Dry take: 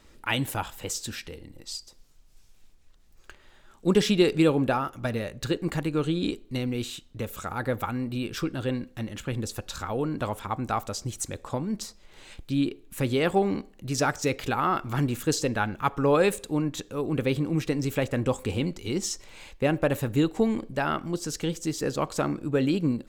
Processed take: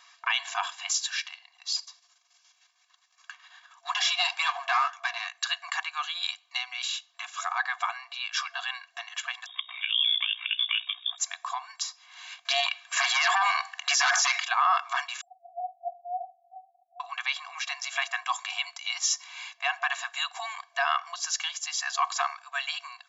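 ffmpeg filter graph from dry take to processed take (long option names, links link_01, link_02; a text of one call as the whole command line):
ffmpeg -i in.wav -filter_complex "[0:a]asettb=1/sr,asplit=3[link_01][link_02][link_03];[link_01]atrim=end=1.764[link_04];[link_02]atrim=start=1.76:end=5.27,asetpts=PTS-STARTPTS,afade=type=in:duration=0.004:curve=qsin,afade=type=out:start_time=3.506:duration=0.004:curve=qsin,aeval=exprs='if(lt(val(0),0),0.447*val(0),val(0))':channel_layout=same,flanger=delay=3:depth=5.6:regen=83:speed=1.5:shape=sinusoidal,acontrast=66[link_05];[link_03]atrim=start=5.266[link_06];[link_04][link_05]acrossfade=duration=0.004:curve1=hsin:curve2=qsin[link_07];[link_07][link_06]acrossfade=duration=0.004:curve1=qsin:curve2=hsin,asettb=1/sr,asplit=3[link_08][link_09][link_10];[link_08]atrim=end=9.464[link_11];[link_09]atrim=start=9.46:end=11.18,asetpts=PTS-STARTPTS,afade=type=in:duration=0.004:curve=qsin,afade=type=out:start_time=1.716:duration=0.004:curve=qsin,lowpass=frequency=3100:width_type=q:width=0.5098,lowpass=frequency=3100:width_type=q:width=0.6013,lowpass=frequency=3100:width_type=q:width=0.9,lowpass=frequency=3100:width_type=q:width=2.563,afreqshift=-3700,tremolo=f=60:d=0.857[link_12];[link_10]atrim=start=11.176[link_13];[link_11][link_12]acrossfade=duration=0.004:curve1=hsin:curve2=qsin[link_14];[link_14][link_13]acrossfade=duration=0.004:curve1=qsin:curve2=hsin,asettb=1/sr,asplit=3[link_15][link_16][link_17];[link_15]atrim=end=12.454[link_18];[link_16]atrim=start=12.45:end=14.4,asetpts=PTS-STARTPTS,afade=type=in:duration=0.004:curve=qsin,afade=type=out:start_time=1.946:duration=0.004:curve=qsin,highpass=frequency=88:width=0.5412,highpass=frequency=88:width=1.3066,equalizer=frequency=1600:width_type=o:width=1:gain=5.5,aeval=exprs='0.398*sin(PI/2*3.16*val(0)/0.398)':channel_layout=same[link_19];[link_17]atrim=start=14.396[link_20];[link_18][link_19]acrossfade=duration=0.004:curve1=hsin:curve2=qsin[link_21];[link_21][link_20]acrossfade=duration=0.004:curve1=qsin:curve2=hsin,asettb=1/sr,asplit=3[link_22][link_23][link_24];[link_22]atrim=end=15.214[link_25];[link_23]atrim=start=15.21:end=17,asetpts=PTS-STARTPTS,afade=type=in:duration=0.004:curve=qsin,afade=type=out:start_time=1.786:duration=0.004:curve=qsin,asuperpass=centerf=700:order=12:qfactor=5.6,aecho=1:1:1:0.44,atrim=end_sample=78939[link_26];[link_24]atrim=start=16.996[link_27];[link_25][link_26]acrossfade=duration=0.004:curve1=hsin:curve2=qsin[link_28];[link_28][link_27]acrossfade=duration=0.004:curve1=qsin:curve2=hsin,afftfilt=real='re*between(b*sr/4096,680,7400)':imag='im*between(b*sr/4096,680,7400)':win_size=4096:overlap=0.75,aecho=1:1:1.8:0.93,alimiter=limit=-19.5dB:level=0:latency=1:release=21,volume=4.5dB" out.wav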